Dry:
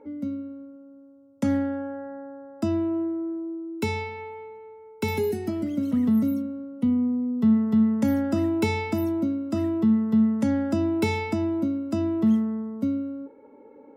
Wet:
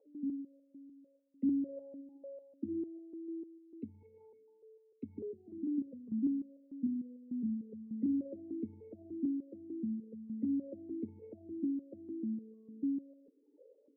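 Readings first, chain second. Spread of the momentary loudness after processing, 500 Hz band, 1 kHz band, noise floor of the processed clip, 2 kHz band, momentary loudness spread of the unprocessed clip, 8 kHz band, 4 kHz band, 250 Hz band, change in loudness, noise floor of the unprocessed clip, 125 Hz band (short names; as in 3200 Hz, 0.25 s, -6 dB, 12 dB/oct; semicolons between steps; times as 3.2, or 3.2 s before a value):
16 LU, -18.0 dB, under -40 dB, -70 dBFS, under -40 dB, 15 LU, n/a, under -40 dB, -14.0 dB, -14.5 dB, -51 dBFS, -23.0 dB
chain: formant sharpening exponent 3; vowel sequencer 6.7 Hz; gain -4.5 dB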